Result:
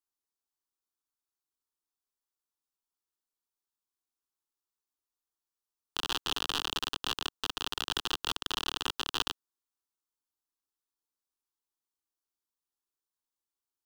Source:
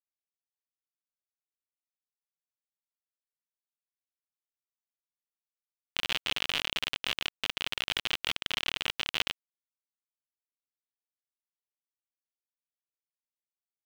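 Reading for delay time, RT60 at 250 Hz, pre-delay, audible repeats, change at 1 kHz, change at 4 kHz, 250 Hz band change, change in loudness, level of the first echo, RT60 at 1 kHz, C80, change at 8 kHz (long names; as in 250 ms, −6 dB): no echo audible, no reverb audible, no reverb audible, no echo audible, +4.0 dB, −1.5 dB, +3.0 dB, −1.5 dB, no echo audible, no reverb audible, no reverb audible, +3.0 dB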